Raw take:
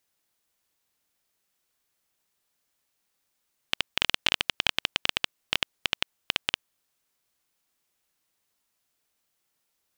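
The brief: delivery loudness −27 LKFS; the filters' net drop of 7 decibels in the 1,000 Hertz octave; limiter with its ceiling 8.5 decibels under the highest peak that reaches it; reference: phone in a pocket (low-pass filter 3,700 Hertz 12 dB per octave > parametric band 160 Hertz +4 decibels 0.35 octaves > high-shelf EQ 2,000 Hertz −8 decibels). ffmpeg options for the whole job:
ffmpeg -i in.wav -af "equalizer=frequency=1000:width_type=o:gain=-7,alimiter=limit=-13dB:level=0:latency=1,lowpass=3700,equalizer=frequency=160:width_type=o:width=0.35:gain=4,highshelf=frequency=2000:gain=-8,volume=17dB" out.wav

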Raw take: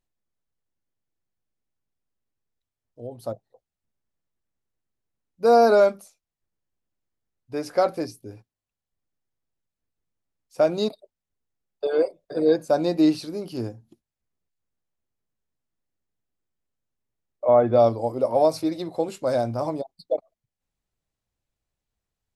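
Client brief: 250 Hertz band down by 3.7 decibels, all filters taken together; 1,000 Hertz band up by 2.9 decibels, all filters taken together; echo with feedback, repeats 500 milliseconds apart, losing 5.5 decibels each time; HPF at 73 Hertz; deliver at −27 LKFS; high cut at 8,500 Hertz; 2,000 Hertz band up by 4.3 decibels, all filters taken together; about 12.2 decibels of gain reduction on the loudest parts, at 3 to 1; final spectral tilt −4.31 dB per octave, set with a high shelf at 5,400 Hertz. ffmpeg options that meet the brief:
ffmpeg -i in.wav -af "highpass=73,lowpass=8500,equalizer=frequency=250:width_type=o:gain=-5.5,equalizer=frequency=1000:width_type=o:gain=4.5,equalizer=frequency=2000:width_type=o:gain=3.5,highshelf=frequency=5400:gain=6,acompressor=threshold=-28dB:ratio=3,aecho=1:1:500|1000|1500|2000|2500|3000|3500:0.531|0.281|0.149|0.079|0.0419|0.0222|0.0118,volume=5dB" out.wav

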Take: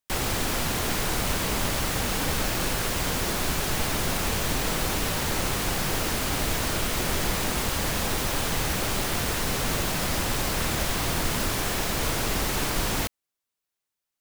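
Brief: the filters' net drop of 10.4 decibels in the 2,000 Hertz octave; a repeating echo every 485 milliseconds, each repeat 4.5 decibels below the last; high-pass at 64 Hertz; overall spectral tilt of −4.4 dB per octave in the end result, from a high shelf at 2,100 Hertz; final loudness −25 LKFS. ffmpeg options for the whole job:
ffmpeg -i in.wav -af "highpass=64,equalizer=frequency=2000:width_type=o:gain=-9,highshelf=frequency=2100:gain=-8,aecho=1:1:485|970|1455|1940|2425|2910|3395|3880|4365:0.596|0.357|0.214|0.129|0.0772|0.0463|0.0278|0.0167|0.01,volume=4.5dB" out.wav

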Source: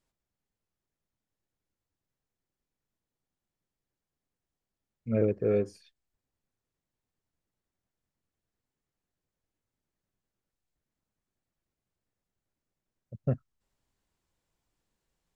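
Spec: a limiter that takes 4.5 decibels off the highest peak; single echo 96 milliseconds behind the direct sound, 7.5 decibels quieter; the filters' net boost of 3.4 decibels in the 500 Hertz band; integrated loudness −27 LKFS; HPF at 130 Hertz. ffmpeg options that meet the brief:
ffmpeg -i in.wav -af "highpass=130,equalizer=frequency=500:width_type=o:gain=4,alimiter=limit=-17dB:level=0:latency=1,aecho=1:1:96:0.422,volume=2dB" out.wav

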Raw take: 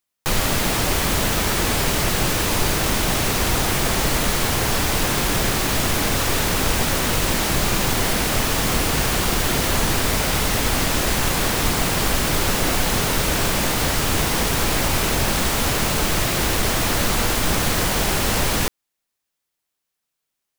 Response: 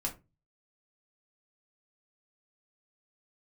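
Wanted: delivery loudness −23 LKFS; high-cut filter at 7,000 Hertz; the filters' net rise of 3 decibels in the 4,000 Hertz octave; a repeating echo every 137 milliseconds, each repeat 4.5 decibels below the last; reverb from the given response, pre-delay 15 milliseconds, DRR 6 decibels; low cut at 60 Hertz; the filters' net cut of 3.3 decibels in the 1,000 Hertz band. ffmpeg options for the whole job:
-filter_complex "[0:a]highpass=60,lowpass=7000,equalizer=frequency=1000:width_type=o:gain=-4.5,equalizer=frequency=4000:width_type=o:gain=4.5,aecho=1:1:137|274|411|548|685|822|959|1096|1233:0.596|0.357|0.214|0.129|0.0772|0.0463|0.0278|0.0167|0.01,asplit=2[link_01][link_02];[1:a]atrim=start_sample=2205,adelay=15[link_03];[link_02][link_03]afir=irnorm=-1:irlink=0,volume=-8dB[link_04];[link_01][link_04]amix=inputs=2:normalize=0,volume=-5.5dB"

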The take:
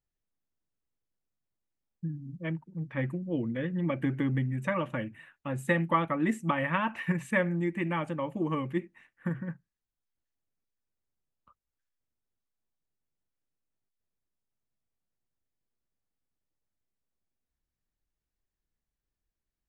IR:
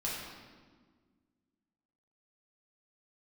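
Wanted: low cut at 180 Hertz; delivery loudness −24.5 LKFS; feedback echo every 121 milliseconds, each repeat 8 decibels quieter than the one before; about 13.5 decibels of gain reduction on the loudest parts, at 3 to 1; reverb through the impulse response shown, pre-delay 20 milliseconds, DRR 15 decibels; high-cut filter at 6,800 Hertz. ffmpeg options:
-filter_complex "[0:a]highpass=180,lowpass=6800,acompressor=threshold=-41dB:ratio=3,aecho=1:1:121|242|363|484|605:0.398|0.159|0.0637|0.0255|0.0102,asplit=2[link_01][link_02];[1:a]atrim=start_sample=2205,adelay=20[link_03];[link_02][link_03]afir=irnorm=-1:irlink=0,volume=-19dB[link_04];[link_01][link_04]amix=inputs=2:normalize=0,volume=17.5dB"

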